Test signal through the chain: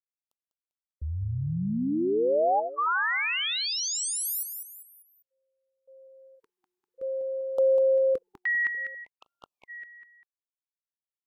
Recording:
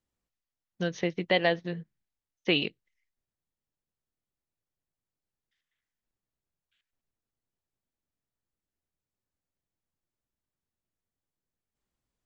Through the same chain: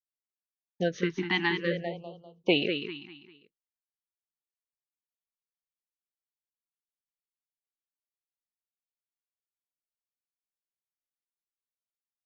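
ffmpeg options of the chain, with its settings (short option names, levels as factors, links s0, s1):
-af "agate=range=0.0224:threshold=0.002:ratio=3:detection=peak,equalizer=f=690:t=o:w=2.5:g=8,aecho=1:1:198|396|594|792:0.447|0.17|0.0645|0.0245,afftfilt=real='re*(1-between(b*sr/1024,520*pow(2000/520,0.5+0.5*sin(2*PI*0.56*pts/sr))/1.41,520*pow(2000/520,0.5+0.5*sin(2*PI*0.56*pts/sr))*1.41))':imag='im*(1-between(b*sr/1024,520*pow(2000/520,0.5+0.5*sin(2*PI*0.56*pts/sr))/1.41,520*pow(2000/520,0.5+0.5*sin(2*PI*0.56*pts/sr))*1.41))':win_size=1024:overlap=0.75,volume=0.75"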